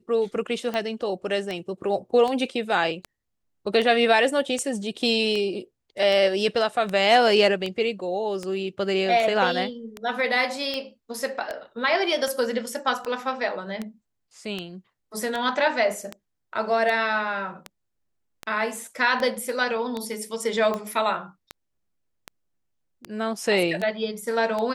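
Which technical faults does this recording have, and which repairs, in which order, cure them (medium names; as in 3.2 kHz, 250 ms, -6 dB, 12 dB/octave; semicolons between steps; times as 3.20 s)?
tick 78 rpm -16 dBFS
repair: de-click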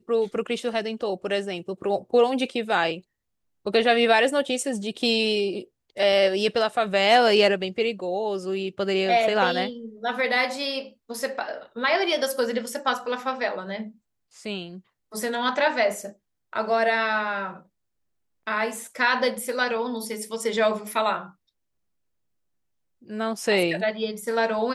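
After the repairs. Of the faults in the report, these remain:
nothing left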